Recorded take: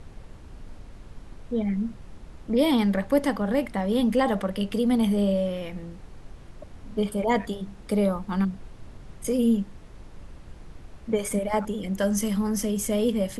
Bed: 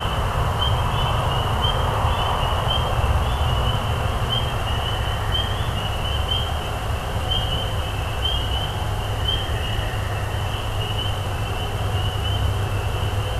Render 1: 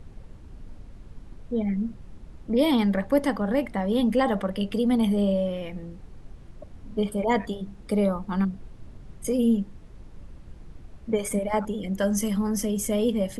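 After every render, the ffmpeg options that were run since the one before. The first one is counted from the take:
-af "afftdn=nr=6:nf=-46"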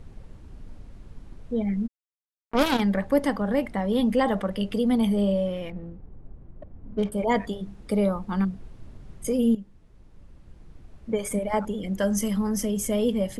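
-filter_complex "[0:a]asplit=3[s0][s1][s2];[s0]afade=t=out:st=1.86:d=0.02[s3];[s1]acrusher=bits=2:mix=0:aa=0.5,afade=t=in:st=1.86:d=0.02,afade=t=out:st=2.79:d=0.02[s4];[s2]afade=t=in:st=2.79:d=0.02[s5];[s3][s4][s5]amix=inputs=3:normalize=0,asettb=1/sr,asplit=3[s6][s7][s8];[s6]atrim=end=5.704[s9];[s7]atrim=start=5.7:end=7.12,asetpts=PTS-STARTPTS,afade=t=in:d=0.004:c=qsin,afade=t=out:st=1.416:d=0.004:c=qsin,adynamicsmooth=sensitivity=6.5:basefreq=820[s10];[s8]atrim=start=7.116[s11];[s9][s10]acrossfade=d=0.004:c1=hsin:c2=qsin[s12];[s12][s11]acrossfade=d=0.004:c1=qsin:c2=hsin,asplit=2[s13][s14];[s13]atrim=end=9.55,asetpts=PTS-STARTPTS,afade=t=out:st=9.546:d=0.004:c=hsin:silence=0.251189[s15];[s14]atrim=start=9.55,asetpts=PTS-STARTPTS,afade=t=in:d=2.04:silence=0.251189[s16];[s15][s16]concat=n=2:v=0:a=1"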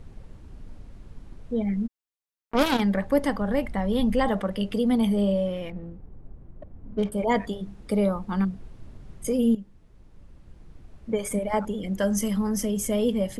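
-filter_complex "[0:a]asettb=1/sr,asplit=3[s0][s1][s2];[s0]atrim=end=2.954[s3];[s1]atrim=start=2.95:end=4.29,asetpts=PTS-STARTPTS,afade=t=in:d=0.004:c=qsin,afade=t=out:st=1.336:d=0.004:c=qsin,asubboost=boost=8:cutoff=140[s4];[s2]atrim=start=4.286[s5];[s3][s4]acrossfade=d=0.004:c1=hsin:c2=qsin[s6];[s6][s5]acrossfade=d=0.004:c1=qsin:c2=hsin"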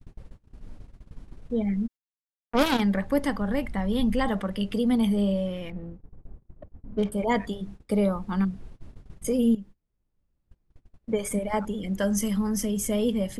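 -af "agate=range=0.0501:threshold=0.01:ratio=16:detection=peak,adynamicequalizer=threshold=0.0126:dfrequency=590:dqfactor=1.1:tfrequency=590:tqfactor=1.1:attack=5:release=100:ratio=0.375:range=2.5:mode=cutabove:tftype=bell"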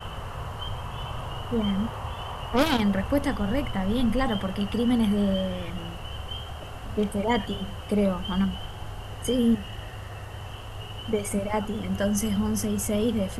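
-filter_complex "[1:a]volume=0.211[s0];[0:a][s0]amix=inputs=2:normalize=0"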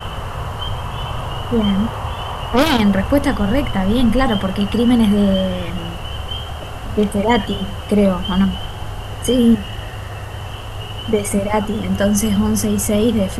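-af "volume=2.99,alimiter=limit=0.794:level=0:latency=1"

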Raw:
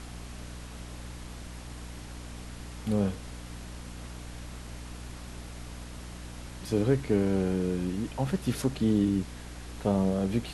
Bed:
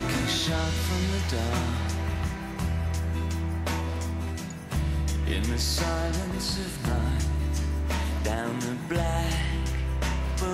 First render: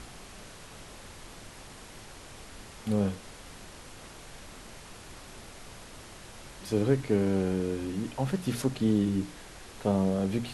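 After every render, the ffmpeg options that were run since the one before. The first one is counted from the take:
-af "bandreject=f=60:t=h:w=6,bandreject=f=120:t=h:w=6,bandreject=f=180:t=h:w=6,bandreject=f=240:t=h:w=6,bandreject=f=300:t=h:w=6"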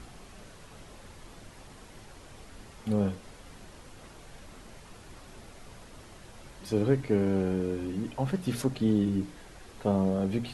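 -af "afftdn=nr=6:nf=-48"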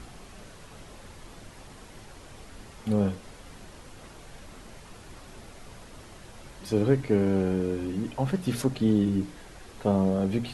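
-af "volume=1.33"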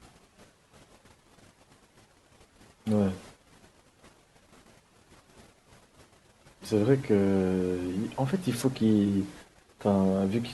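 -af "highpass=f=92:p=1,agate=range=0.2:threshold=0.00501:ratio=16:detection=peak"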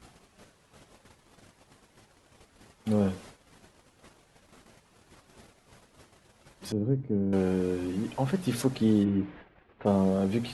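-filter_complex "[0:a]asettb=1/sr,asplit=3[s0][s1][s2];[s0]atrim=end=6.724[s3];[s1]atrim=start=6.72:end=7.33,asetpts=PTS-STARTPTS,afade=t=in:d=0.004:c=qsin,afade=t=out:st=0.606:d=0.004:c=qsin,bandpass=f=150:t=q:w=0.98[s4];[s2]atrim=start=7.326[s5];[s3][s4]acrossfade=d=0.004:c1=hsin:c2=qsin[s6];[s6][s5]acrossfade=d=0.004:c1=qsin:c2=hsin,asplit=3[s7][s8][s9];[s7]afade=t=out:st=9.03:d=0.02[s10];[s8]lowpass=f=2800:w=0.5412,lowpass=f=2800:w=1.3066,afade=t=in:st=9.03:d=0.02,afade=t=out:st=9.85:d=0.02[s11];[s9]afade=t=in:st=9.85:d=0.02[s12];[s10][s11][s12]amix=inputs=3:normalize=0"

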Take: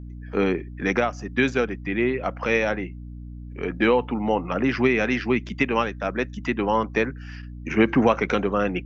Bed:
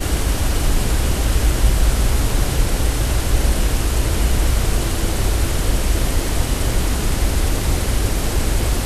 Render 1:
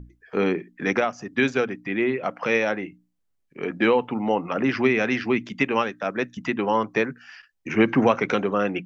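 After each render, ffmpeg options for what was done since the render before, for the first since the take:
-af "bandreject=f=60:t=h:w=6,bandreject=f=120:t=h:w=6,bandreject=f=180:t=h:w=6,bandreject=f=240:t=h:w=6,bandreject=f=300:t=h:w=6"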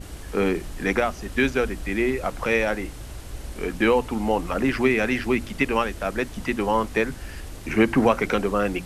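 -filter_complex "[1:a]volume=0.112[s0];[0:a][s0]amix=inputs=2:normalize=0"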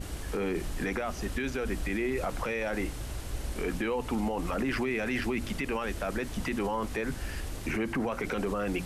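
-af "acompressor=threshold=0.0891:ratio=6,alimiter=limit=0.075:level=0:latency=1:release=14"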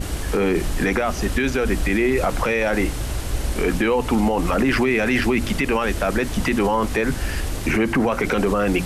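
-af "volume=3.76"

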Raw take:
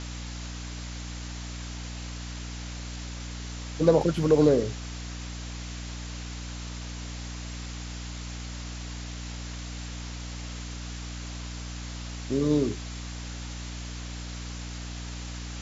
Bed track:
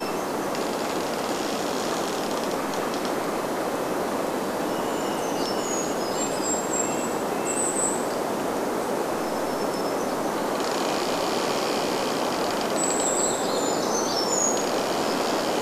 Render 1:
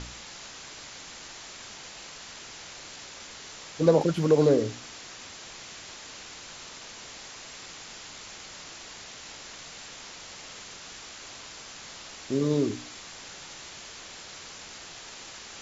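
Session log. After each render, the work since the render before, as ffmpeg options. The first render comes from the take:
-af "bandreject=f=60:t=h:w=4,bandreject=f=120:t=h:w=4,bandreject=f=180:t=h:w=4,bandreject=f=240:t=h:w=4,bandreject=f=300:t=h:w=4"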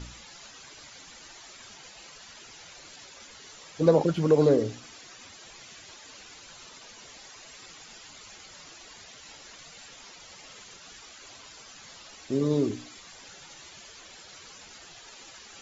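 -af "afftdn=nr=12:nf=-45"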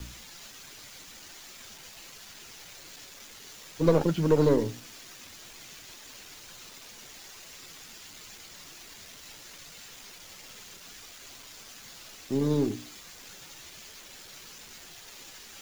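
-filter_complex "[0:a]acrossover=split=160|460|1500[s0][s1][s2][s3];[s2]aeval=exprs='max(val(0),0)':c=same[s4];[s3]acrusher=bits=7:mix=0:aa=0.000001[s5];[s0][s1][s4][s5]amix=inputs=4:normalize=0"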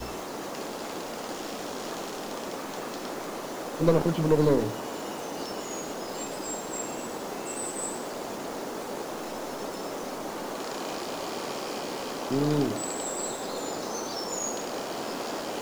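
-filter_complex "[1:a]volume=0.355[s0];[0:a][s0]amix=inputs=2:normalize=0"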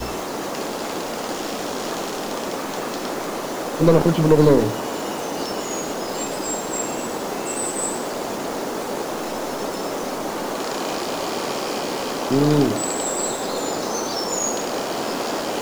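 -af "volume=2.66,alimiter=limit=0.794:level=0:latency=1"

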